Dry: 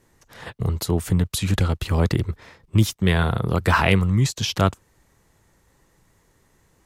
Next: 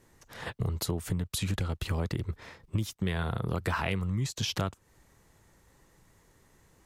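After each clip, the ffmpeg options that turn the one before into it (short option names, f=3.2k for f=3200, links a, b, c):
-af "acompressor=threshold=-26dB:ratio=6,volume=-1.5dB"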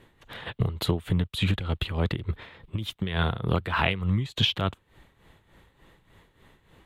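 -af "highshelf=f=4.4k:t=q:w=3:g=-8.5,tremolo=f=3.4:d=0.71,volume=7.5dB"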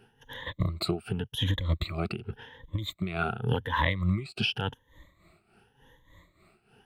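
-af "afftfilt=real='re*pow(10,20/40*sin(2*PI*(1.1*log(max(b,1)*sr/1024/100)/log(2)-(0.89)*(pts-256)/sr)))':imag='im*pow(10,20/40*sin(2*PI*(1.1*log(max(b,1)*sr/1024/100)/log(2)-(0.89)*(pts-256)/sr)))':win_size=1024:overlap=0.75,volume=-6.5dB"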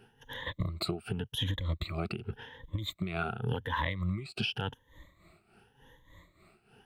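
-af "acompressor=threshold=-31dB:ratio=2.5"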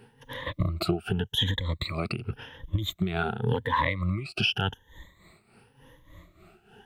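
-af "afftfilt=real='re*pow(10,9/40*sin(2*PI*(0.98*log(max(b,1)*sr/1024/100)/log(2)-(0.55)*(pts-256)/sr)))':imag='im*pow(10,9/40*sin(2*PI*(0.98*log(max(b,1)*sr/1024/100)/log(2)-(0.55)*(pts-256)/sr)))':win_size=1024:overlap=0.75,volume=5dB"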